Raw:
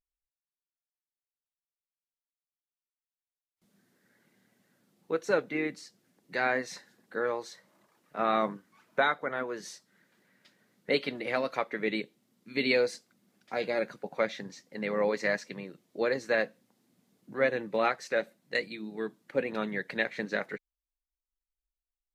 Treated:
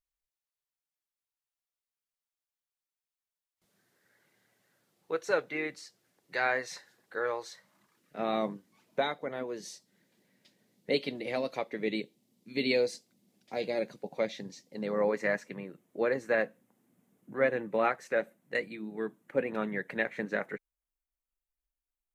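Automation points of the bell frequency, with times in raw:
bell -12 dB 1 oct
7.44 s 220 Hz
8.27 s 1400 Hz
14.68 s 1400 Hz
15.2 s 4500 Hz

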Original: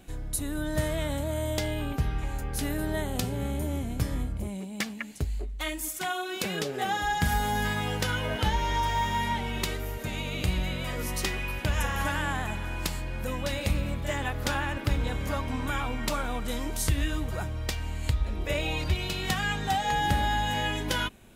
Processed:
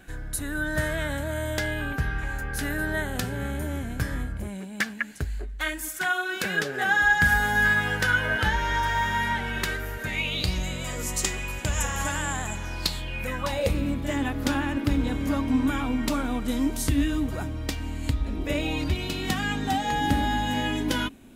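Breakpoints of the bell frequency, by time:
bell +15 dB 0.43 oct
10.05 s 1600 Hz
10.65 s 7300 Hz
12.54 s 7300 Hz
13.25 s 2300 Hz
13.83 s 270 Hz

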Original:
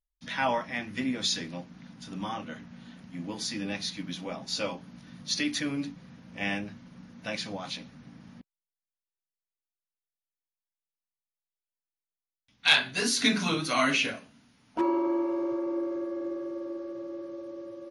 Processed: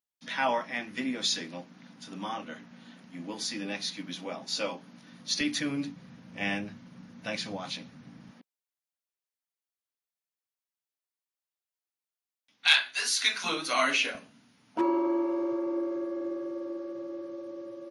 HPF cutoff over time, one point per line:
230 Hz
from 5.41 s 91 Hz
from 8.31 s 310 Hz
from 12.67 s 1100 Hz
from 13.44 s 400 Hz
from 14.15 s 120 Hz

